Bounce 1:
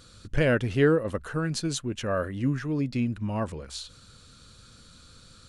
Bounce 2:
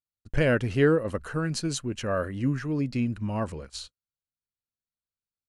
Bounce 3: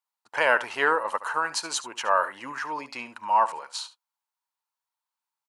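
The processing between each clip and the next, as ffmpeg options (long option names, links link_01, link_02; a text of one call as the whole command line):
ffmpeg -i in.wav -af "agate=range=-51dB:threshold=-40dB:ratio=16:detection=peak,bandreject=frequency=3500:width=10" out.wav
ffmpeg -i in.wav -af "highpass=frequency=920:width_type=q:width=7.3,aecho=1:1:72:0.168,volume=4dB" out.wav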